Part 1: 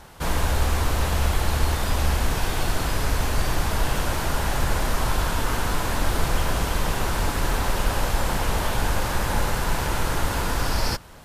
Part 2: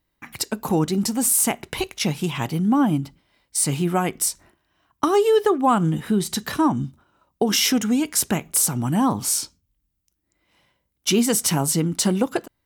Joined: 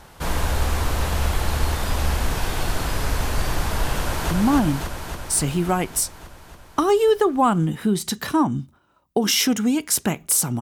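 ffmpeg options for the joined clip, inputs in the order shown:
-filter_complex "[0:a]apad=whole_dur=10.61,atrim=end=10.61,atrim=end=4.312[a];[1:a]atrim=start=2.558:end=8.86[b];[a][b]acrossfade=d=0.004:c1=hsin:c2=hsin,asplit=2[c][d];[d]afade=t=in:st=3.96:d=0.01,afade=t=out:st=4.31:d=0.01,aecho=0:1:280|560|840|1120|1400|1680|1960|2240|2520|2800|3080|3360:0.794328|0.595746|0.44681|0.335107|0.25133|0.188498|0.141373|0.10603|0.0795225|0.0596419|0.0447314|0.0335486[e];[c][e]amix=inputs=2:normalize=0"

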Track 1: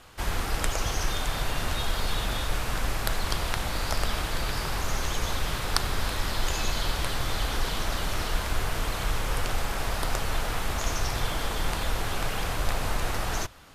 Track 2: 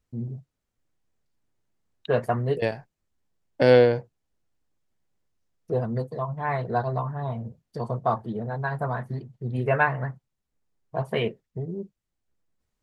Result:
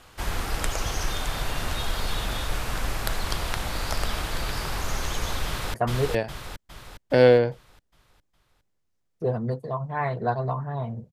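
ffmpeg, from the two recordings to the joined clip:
-filter_complex "[0:a]apad=whole_dur=11.12,atrim=end=11.12,atrim=end=5.742[a];[1:a]atrim=start=2.218:end=7.6[b];[a][b]acrossfade=d=0.004:c1=hsin:c2=hsin,asplit=2[c][d];[d]afade=t=in:st=5.46:d=0.01,afade=t=out:st=5.74:d=0.01,aecho=0:1:410|820|1230|1640|2050|2460|2870:0.841395|0.420698|0.210349|0.105174|0.0525872|0.0262936|0.0131468[e];[c][e]amix=inputs=2:normalize=0"

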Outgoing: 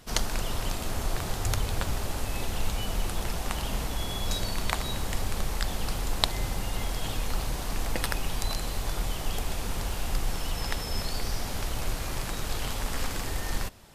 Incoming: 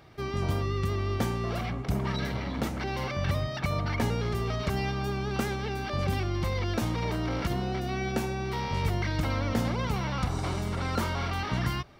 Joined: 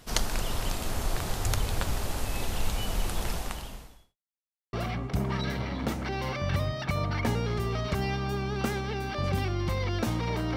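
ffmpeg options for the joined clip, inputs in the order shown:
-filter_complex "[0:a]apad=whole_dur=10.56,atrim=end=10.56,asplit=2[a][b];[a]atrim=end=4.17,asetpts=PTS-STARTPTS,afade=t=out:st=3.33:d=0.84:c=qua[c];[b]atrim=start=4.17:end=4.73,asetpts=PTS-STARTPTS,volume=0[d];[1:a]atrim=start=1.48:end=7.31,asetpts=PTS-STARTPTS,afade=t=in:d=0.004:c=hsin[e];[c][d][e]concat=n=3:v=0:a=1"

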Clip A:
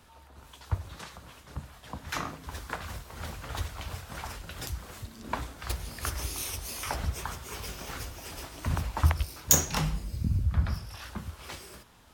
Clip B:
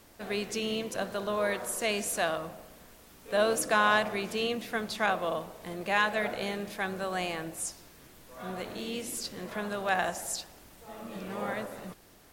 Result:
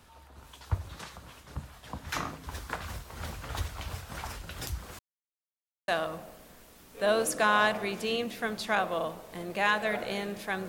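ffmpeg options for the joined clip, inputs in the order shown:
-filter_complex "[0:a]apad=whole_dur=10.68,atrim=end=10.68,asplit=2[a][b];[a]atrim=end=4.99,asetpts=PTS-STARTPTS,afade=t=out:st=4.986:d=0.004:c=hsin[c];[b]atrim=start=4.99:end=5.88,asetpts=PTS-STARTPTS,volume=0[d];[1:a]atrim=start=2.19:end=6.99,asetpts=PTS-STARTPTS,afade=t=in:d=0.004:c=hsin[e];[c][d][e]concat=n=3:v=0:a=1"

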